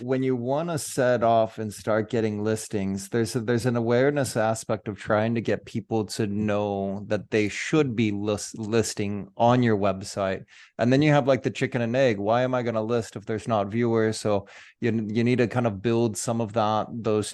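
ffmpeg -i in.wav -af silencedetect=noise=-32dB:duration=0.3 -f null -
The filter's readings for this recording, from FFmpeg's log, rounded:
silence_start: 10.38
silence_end: 10.79 | silence_duration: 0.41
silence_start: 14.40
silence_end: 14.82 | silence_duration: 0.42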